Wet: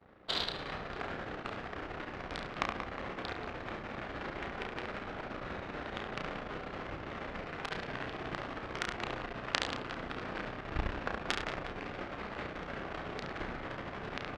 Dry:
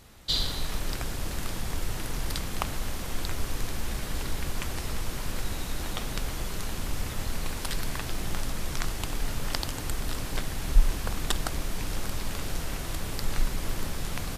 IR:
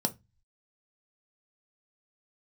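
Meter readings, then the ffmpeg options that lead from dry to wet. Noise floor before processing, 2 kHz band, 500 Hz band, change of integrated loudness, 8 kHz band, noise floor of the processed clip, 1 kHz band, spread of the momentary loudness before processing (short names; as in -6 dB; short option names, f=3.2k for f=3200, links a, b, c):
-35 dBFS, -0.5 dB, 0.0 dB, -6.0 dB, -19.0 dB, -45 dBFS, -0.5 dB, 6 LU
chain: -filter_complex "[0:a]flanger=delay=0.8:depth=3.4:regen=-86:speed=1.3:shape=triangular,aeval=exprs='max(val(0),0)':c=same,asplit=2[a][b];[b]aecho=0:1:70|182|361.2|647.9|1107:0.631|0.398|0.251|0.158|0.1[c];[a][c]amix=inputs=2:normalize=0,adynamicsmooth=sensitivity=6:basefreq=1k,aeval=exprs='0.299*(cos(1*acos(clip(val(0)/0.299,-1,1)))-cos(1*PI/2))+0.015*(cos(8*acos(clip(val(0)/0.299,-1,1)))-cos(8*PI/2))':c=same,highpass=f=700:p=1,equalizer=f=950:w=3.5:g=-4.5,asplit=2[d][e];[e]adelay=32,volume=-6dB[f];[d][f]amix=inputs=2:normalize=0,acrossover=split=3100[g][h];[h]lowpass=4.2k[i];[g][i]amix=inputs=2:normalize=0,volume=13dB"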